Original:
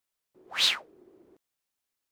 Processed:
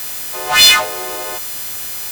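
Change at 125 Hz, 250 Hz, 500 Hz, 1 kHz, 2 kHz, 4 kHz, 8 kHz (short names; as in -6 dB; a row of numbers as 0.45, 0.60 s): n/a, +21.0 dB, +25.5 dB, +23.5 dB, +19.5 dB, +16.5 dB, +23.0 dB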